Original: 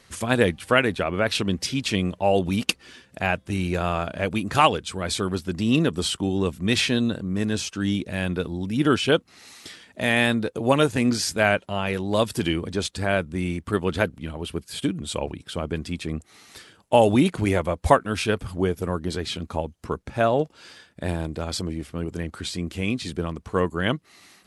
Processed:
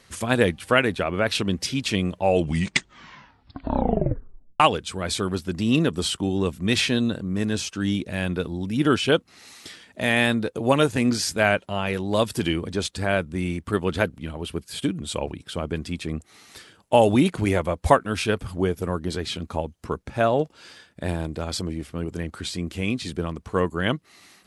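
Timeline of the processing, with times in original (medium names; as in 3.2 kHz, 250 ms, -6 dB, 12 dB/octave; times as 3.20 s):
2.19 s: tape stop 2.41 s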